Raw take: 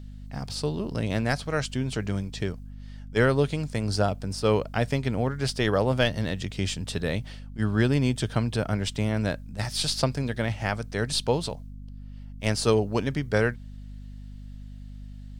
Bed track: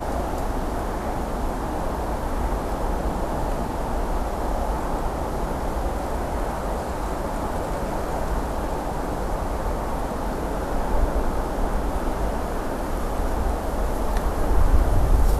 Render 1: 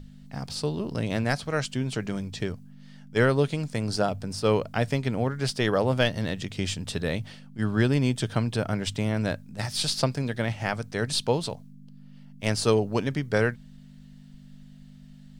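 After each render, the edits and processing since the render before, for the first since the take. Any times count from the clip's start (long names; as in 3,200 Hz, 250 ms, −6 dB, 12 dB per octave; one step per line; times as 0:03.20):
mains-hum notches 50/100 Hz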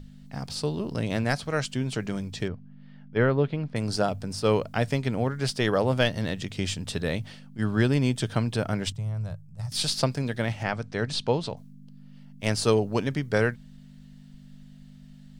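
0:02.48–0:03.76: high-frequency loss of the air 360 metres
0:08.92–0:09.72: drawn EQ curve 150 Hz 0 dB, 250 Hz −23 dB, 580 Hz −14 dB, 1,200 Hz −12 dB, 1,700 Hz −21 dB, 3,700 Hz −18 dB, 7,500 Hz −12 dB
0:10.63–0:11.57: high-frequency loss of the air 81 metres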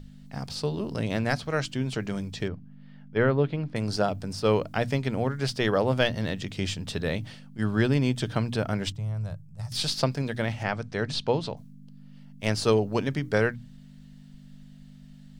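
mains-hum notches 60/120/180/240/300 Hz
dynamic equaliser 9,200 Hz, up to −6 dB, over −51 dBFS, Q 1.2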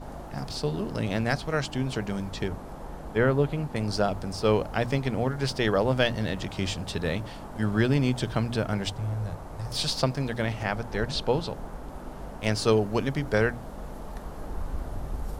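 mix in bed track −15 dB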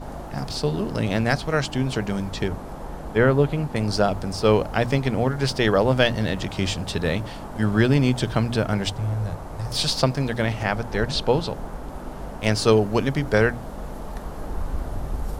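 level +5 dB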